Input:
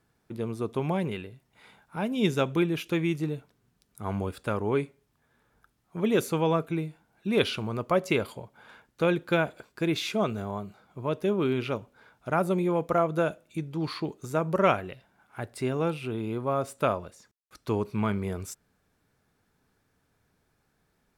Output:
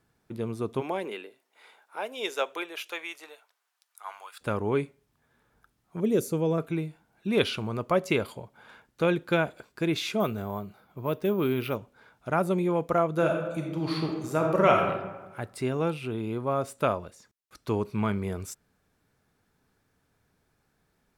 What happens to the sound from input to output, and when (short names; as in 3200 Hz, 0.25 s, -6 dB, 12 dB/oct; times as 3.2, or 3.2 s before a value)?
0.8–4.4 HPF 270 Hz -> 1000 Hz 24 dB/oct
6–6.58 band shelf 1700 Hz -10 dB 2.7 oct
10.2–11.76 careless resampling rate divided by 3×, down filtered, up hold
13.11–14.87 reverb throw, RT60 1.2 s, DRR 1 dB